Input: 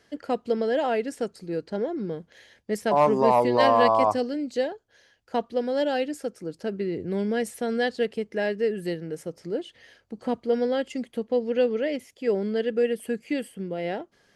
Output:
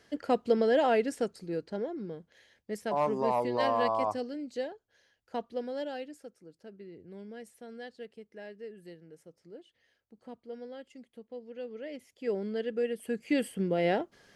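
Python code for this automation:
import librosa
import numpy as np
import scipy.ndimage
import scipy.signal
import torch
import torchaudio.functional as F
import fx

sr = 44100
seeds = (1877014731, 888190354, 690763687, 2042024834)

y = fx.gain(x, sr, db=fx.line((1.02, -0.5), (2.13, -9.0), (5.6, -9.0), (6.52, -19.0), (11.58, -19.0), (12.25, -7.5), (12.98, -7.5), (13.47, 2.5)))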